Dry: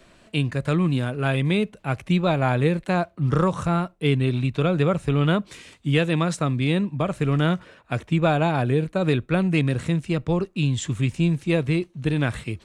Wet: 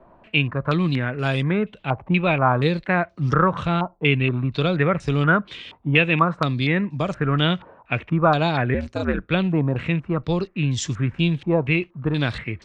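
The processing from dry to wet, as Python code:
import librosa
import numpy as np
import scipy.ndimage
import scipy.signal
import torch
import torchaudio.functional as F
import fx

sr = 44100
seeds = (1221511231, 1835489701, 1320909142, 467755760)

y = fx.ring_mod(x, sr, carrier_hz=78.0, at=(8.74, 9.31))
y = fx.filter_held_lowpass(y, sr, hz=4.2, low_hz=900.0, high_hz=5600.0)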